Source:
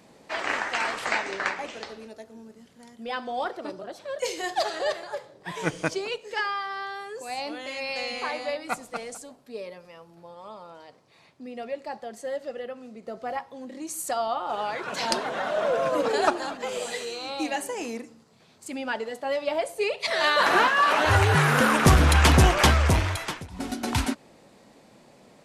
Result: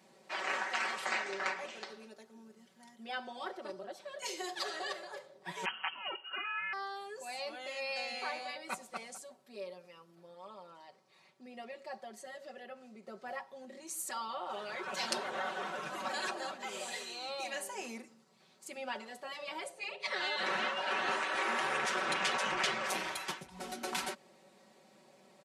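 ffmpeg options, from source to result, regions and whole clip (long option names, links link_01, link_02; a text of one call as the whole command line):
ffmpeg -i in.wav -filter_complex "[0:a]asettb=1/sr,asplit=3[link_01][link_02][link_03];[link_01]atrim=end=5.654[link_04];[link_02]atrim=start=5.65:end=6.73,asetpts=PTS-STARTPTS,afade=type=in:duration=0.004:curve=qsin,afade=type=out:start_time=1.076:duration=0.004:curve=qsin,equalizer=frequency=1900:width_type=o:width=0.44:gain=12,lowpass=frequency=2800:width_type=q:width=0.5098,lowpass=frequency=2800:width_type=q:width=0.6013,lowpass=frequency=2800:width_type=q:width=0.9,lowpass=frequency=2800:width_type=q:width=2.563,afreqshift=-3300[link_05];[link_03]atrim=start=6.726[link_06];[link_04][link_05]acrossfade=duration=0.004:curve1=hsin:curve2=qsin[link_07];[link_07][link_06]acrossfade=duration=0.004:curve1=qsin:curve2=hsin,asettb=1/sr,asplit=3[link_08][link_09][link_10];[link_08]atrim=end=19.694[link_11];[link_09]atrim=start=19.69:end=22.84,asetpts=PTS-STARTPTS,afade=type=in:duration=0.004:curve=qsin,afade=type=out:start_time=3.146:duration=0.004:curve=qsin,lowpass=frequency=9600:width=0.5412,lowpass=frequency=9600:width=1.3066,highshelf=frequency=4600:gain=-9.5[link_12];[link_10]atrim=start=22.836[link_13];[link_11][link_12]acrossfade=duration=0.004:curve1=hsin:curve2=qsin[link_14];[link_14][link_13]acrossfade=duration=0.004:curve1=qsin:curve2=hsin,afftfilt=real='re*lt(hypot(re,im),0.251)':imag='im*lt(hypot(re,im),0.251)':win_size=1024:overlap=0.75,highpass=frequency=300:poles=1,aecho=1:1:5.3:0.89,volume=-9dB" out.wav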